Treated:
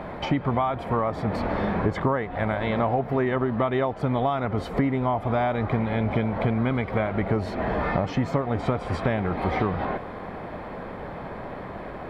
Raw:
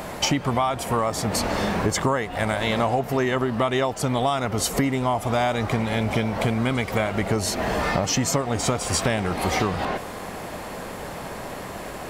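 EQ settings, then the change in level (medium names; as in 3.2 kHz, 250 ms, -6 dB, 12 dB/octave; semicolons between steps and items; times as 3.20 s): distance through air 460 m; band-stop 2.8 kHz, Q 10; 0.0 dB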